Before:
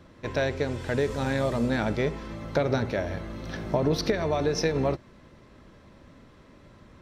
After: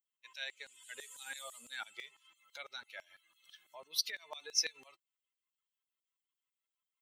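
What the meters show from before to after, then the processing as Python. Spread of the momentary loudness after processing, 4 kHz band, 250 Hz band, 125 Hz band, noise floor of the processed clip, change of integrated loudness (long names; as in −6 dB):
19 LU, −1.5 dB, below −40 dB, below −40 dB, below −85 dBFS, −12.0 dB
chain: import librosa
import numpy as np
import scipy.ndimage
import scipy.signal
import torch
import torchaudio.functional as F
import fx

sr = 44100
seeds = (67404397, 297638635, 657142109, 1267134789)

y = fx.bin_expand(x, sr, power=2.0)
y = fx.filter_lfo_highpass(y, sr, shape='saw_down', hz=6.0, low_hz=960.0, high_hz=5000.0, q=0.77)
y = F.preemphasis(torch.from_numpy(y), 0.8).numpy()
y = y * librosa.db_to_amplitude(7.0)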